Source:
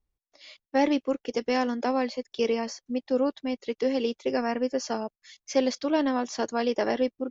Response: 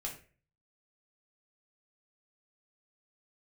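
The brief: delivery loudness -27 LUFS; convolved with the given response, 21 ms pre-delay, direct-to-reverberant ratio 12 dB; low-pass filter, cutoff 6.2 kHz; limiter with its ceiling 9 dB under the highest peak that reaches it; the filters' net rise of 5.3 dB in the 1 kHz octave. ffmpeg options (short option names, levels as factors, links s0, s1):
-filter_complex "[0:a]lowpass=6200,equalizer=f=1000:t=o:g=7,alimiter=limit=0.133:level=0:latency=1,asplit=2[s0][s1];[1:a]atrim=start_sample=2205,adelay=21[s2];[s1][s2]afir=irnorm=-1:irlink=0,volume=0.266[s3];[s0][s3]amix=inputs=2:normalize=0,volume=1.26"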